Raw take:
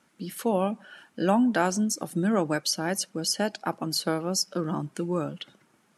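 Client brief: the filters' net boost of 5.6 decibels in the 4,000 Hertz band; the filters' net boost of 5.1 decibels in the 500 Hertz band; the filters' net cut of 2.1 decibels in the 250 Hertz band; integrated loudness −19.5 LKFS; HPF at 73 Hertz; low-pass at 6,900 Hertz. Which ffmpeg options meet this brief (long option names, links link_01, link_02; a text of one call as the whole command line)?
ffmpeg -i in.wav -af "highpass=73,lowpass=6900,equalizer=frequency=250:width_type=o:gain=-5,equalizer=frequency=500:width_type=o:gain=7.5,equalizer=frequency=4000:width_type=o:gain=8.5,volume=5.5dB" out.wav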